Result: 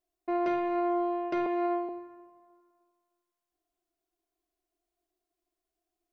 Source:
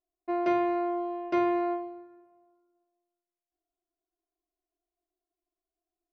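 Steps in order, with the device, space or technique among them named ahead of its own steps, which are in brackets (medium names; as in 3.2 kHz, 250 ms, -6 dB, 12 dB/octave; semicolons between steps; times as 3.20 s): soft clipper into limiter (saturation -18 dBFS, distortion -22 dB; peak limiter -27 dBFS, peak gain reduction 7.5 dB); 1.46–1.89 s: steep high-pass 280 Hz 48 dB/octave; bucket-brigade echo 102 ms, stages 2048, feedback 72%, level -23.5 dB; trim +4 dB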